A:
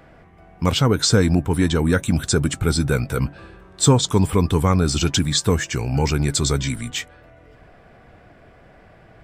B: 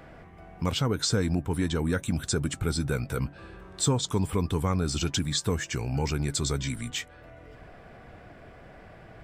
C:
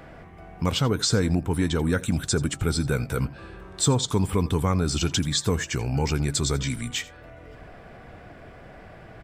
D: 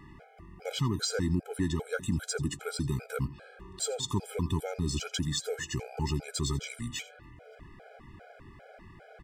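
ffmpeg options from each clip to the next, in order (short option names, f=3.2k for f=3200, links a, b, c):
-af "acompressor=threshold=-40dB:ratio=1.5"
-af "aecho=1:1:84:0.112,volume=3.5dB"
-filter_complex "[0:a]asplit=2[a][b];[b]volume=29dB,asoftclip=hard,volume=-29dB,volume=-10dB[c];[a][c]amix=inputs=2:normalize=0,afftfilt=real='re*gt(sin(2*PI*2.5*pts/sr)*(1-2*mod(floor(b*sr/1024/420),2)),0)':imag='im*gt(sin(2*PI*2.5*pts/sr)*(1-2*mod(floor(b*sr/1024/420),2)),0)':win_size=1024:overlap=0.75,volume=-6dB"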